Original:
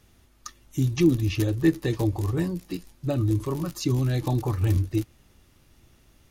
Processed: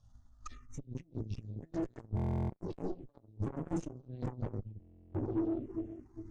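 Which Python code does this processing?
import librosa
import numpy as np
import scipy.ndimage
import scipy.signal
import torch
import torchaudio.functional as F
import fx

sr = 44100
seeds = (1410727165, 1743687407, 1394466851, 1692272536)

y = np.where(x < 0.0, 10.0 ** (-7.0 / 20.0) * x, x)
y = fx.peak_eq(y, sr, hz=fx.line((0.8, 660.0), (3.36, 120.0)), db=-9.0, octaves=2.7, at=(0.8, 3.36), fade=0.02)
y = fx.echo_wet_bandpass(y, sr, ms=405, feedback_pct=51, hz=510.0, wet_db=-8.0)
y = fx.room_shoebox(y, sr, seeds[0], volume_m3=47.0, walls='mixed', distance_m=0.52)
y = fx.over_compress(y, sr, threshold_db=-27.0, ratio=-1.0)
y = fx.low_shelf(y, sr, hz=430.0, db=-3.5)
y = fx.env_phaser(y, sr, low_hz=340.0, high_hz=4600.0, full_db=-24.0)
y = fx.tube_stage(y, sr, drive_db=38.0, bias=0.65)
y = scipy.signal.sosfilt(scipy.signal.butter(4, 8100.0, 'lowpass', fs=sr, output='sos'), y)
y = fx.buffer_glitch(y, sr, at_s=(2.15, 4.8), block=1024, repeats=14)
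y = fx.spectral_expand(y, sr, expansion=1.5)
y = F.gain(torch.from_numpy(y), 6.5).numpy()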